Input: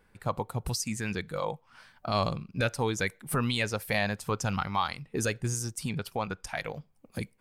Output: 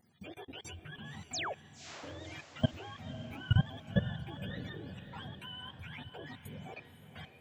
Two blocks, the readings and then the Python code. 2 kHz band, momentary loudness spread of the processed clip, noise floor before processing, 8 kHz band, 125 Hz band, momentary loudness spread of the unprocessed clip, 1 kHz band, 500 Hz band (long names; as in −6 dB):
−11.0 dB, 16 LU, −65 dBFS, −14.0 dB, −3.0 dB, 8 LU, −14.0 dB, −12.5 dB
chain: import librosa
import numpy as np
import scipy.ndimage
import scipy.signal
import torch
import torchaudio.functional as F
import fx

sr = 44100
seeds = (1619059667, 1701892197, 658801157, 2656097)

y = fx.octave_mirror(x, sr, pivot_hz=600.0)
y = fx.level_steps(y, sr, step_db=23)
y = fx.spec_paint(y, sr, seeds[0], shape='fall', start_s=1.33, length_s=0.2, low_hz=470.0, high_hz=8400.0, level_db=-37.0)
y = fx.echo_diffused(y, sr, ms=536, feedback_pct=49, wet_db=-10)